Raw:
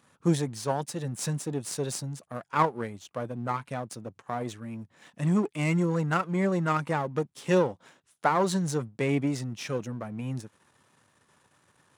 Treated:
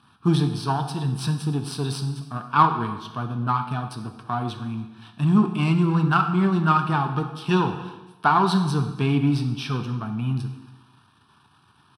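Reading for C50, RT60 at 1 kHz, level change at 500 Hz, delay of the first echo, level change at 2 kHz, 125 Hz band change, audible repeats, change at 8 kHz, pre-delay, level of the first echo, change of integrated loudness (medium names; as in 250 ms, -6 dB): 8.5 dB, 1.1 s, -1.5 dB, 281 ms, +5.0 dB, +8.0 dB, 1, no reading, 4 ms, -22.5 dB, +6.0 dB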